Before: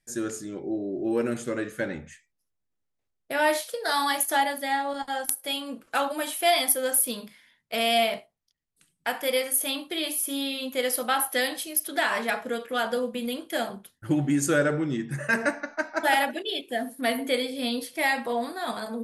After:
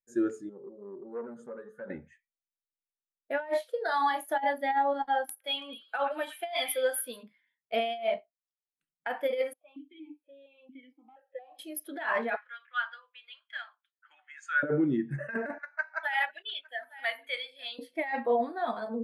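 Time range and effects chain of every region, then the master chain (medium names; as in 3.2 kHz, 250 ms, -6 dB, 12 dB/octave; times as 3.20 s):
0.49–1.90 s: compression 2:1, threshold -32 dBFS + static phaser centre 470 Hz, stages 8 + transformer saturation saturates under 760 Hz
3.71–4.39 s: compression 4:1, threshold -25 dBFS + doubling 33 ms -11.5 dB
5.29–7.23 s: bass shelf 330 Hz -11 dB + repeats whose band climbs or falls 110 ms, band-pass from 2.1 kHz, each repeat 0.7 oct, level -7 dB
9.53–11.59 s: compression 5:1, threshold -30 dBFS + stepped vowel filter 4.3 Hz
12.36–14.63 s: high-pass 1.2 kHz 24 dB/octave + distance through air 87 m
15.58–17.79 s: high-pass 1.2 kHz + delay 859 ms -17 dB
whole clip: tone controls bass -5 dB, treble -9 dB; compressor with a negative ratio -27 dBFS, ratio -0.5; spectral contrast expander 1.5:1; trim -3.5 dB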